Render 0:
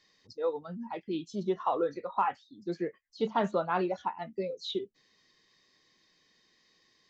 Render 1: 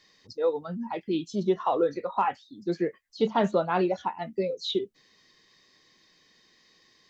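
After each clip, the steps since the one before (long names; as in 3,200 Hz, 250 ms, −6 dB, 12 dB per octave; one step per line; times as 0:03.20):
dynamic equaliser 1,200 Hz, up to −5 dB, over −41 dBFS, Q 1.3
level +6 dB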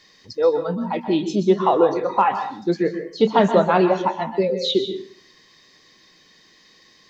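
dense smooth reverb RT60 0.52 s, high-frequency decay 0.8×, pre-delay 115 ms, DRR 8 dB
level +8 dB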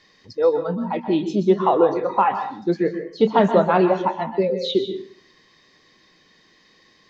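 high-shelf EQ 4,800 Hz −11 dB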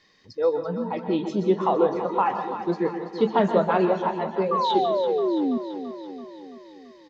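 sound drawn into the spectrogram fall, 0:04.51–0:05.58, 230–1,200 Hz −19 dBFS
on a send: repeating echo 334 ms, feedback 60%, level −11 dB
on the sum: level −4.5 dB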